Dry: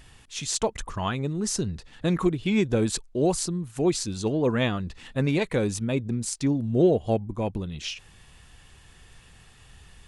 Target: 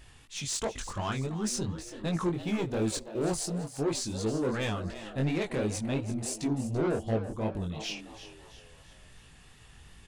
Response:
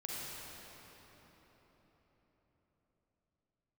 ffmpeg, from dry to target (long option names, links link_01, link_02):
-filter_complex "[0:a]asoftclip=type=tanh:threshold=-22.5dB,flanger=delay=18:depth=5.4:speed=2.8,asettb=1/sr,asplit=3[link_01][link_02][link_03];[link_01]atrim=end=2.344[link_04];[link_02]atrim=start=2.34:end=3.82,asetpts=PTS-STARTPTS,afade=type=in:duration=0.004:curve=qsin,afade=type=out:start_time=1.476:duration=0.004:curve=qsin,aeval=exprs='sgn(val(0))*max(abs(val(0))-0.002,0)':channel_layout=same[link_05];[link_03]atrim=start=3.816[link_06];[link_04][link_05]acrossfade=duration=0.004:curve1=hsin:curve2=qsin[link_07];[link_07][link_06]acrossfade=duration=0.004:curve1=qsin:curve2=hsin,asplit=5[link_08][link_09][link_10][link_11][link_12];[link_09]adelay=335,afreqshift=110,volume=-13dB[link_13];[link_10]adelay=670,afreqshift=220,volume=-19.9dB[link_14];[link_11]adelay=1005,afreqshift=330,volume=-26.9dB[link_15];[link_12]adelay=1340,afreqshift=440,volume=-33.8dB[link_16];[link_08][link_13][link_14][link_15][link_16]amix=inputs=5:normalize=0,asplit=2[link_17][link_18];[1:a]atrim=start_sample=2205,atrim=end_sample=3528[link_19];[link_18][link_19]afir=irnorm=-1:irlink=0,volume=-22dB[link_20];[link_17][link_20]amix=inputs=2:normalize=0"